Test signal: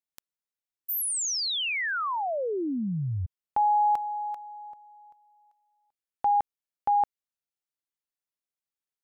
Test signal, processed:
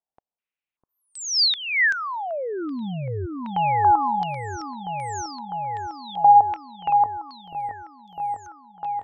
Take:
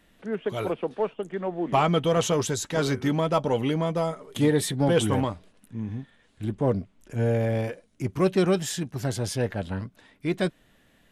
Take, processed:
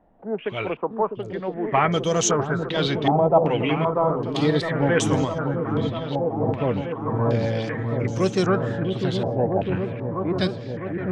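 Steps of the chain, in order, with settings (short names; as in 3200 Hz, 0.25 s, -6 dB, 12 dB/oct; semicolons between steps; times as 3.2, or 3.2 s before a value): repeats that get brighter 0.652 s, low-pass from 400 Hz, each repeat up 1 oct, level -3 dB; stepped low-pass 2.6 Hz 780–6300 Hz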